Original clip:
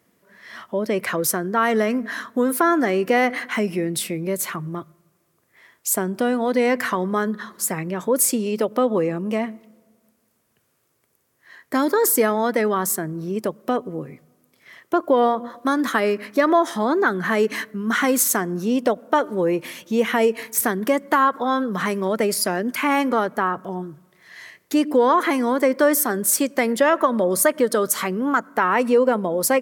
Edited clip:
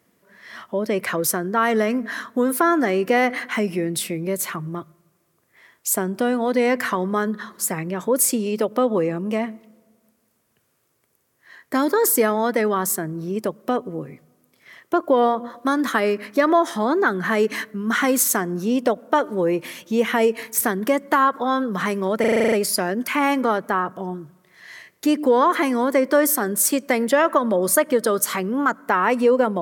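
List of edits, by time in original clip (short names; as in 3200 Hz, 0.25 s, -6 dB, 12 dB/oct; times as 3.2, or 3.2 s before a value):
22.2 stutter 0.04 s, 9 plays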